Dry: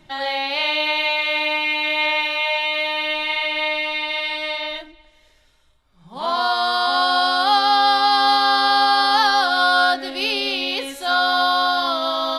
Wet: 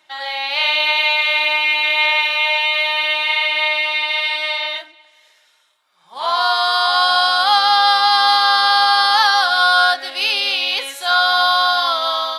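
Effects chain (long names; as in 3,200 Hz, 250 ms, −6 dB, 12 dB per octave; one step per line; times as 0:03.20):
high-pass filter 820 Hz 12 dB per octave
automatic gain control gain up to 5.5 dB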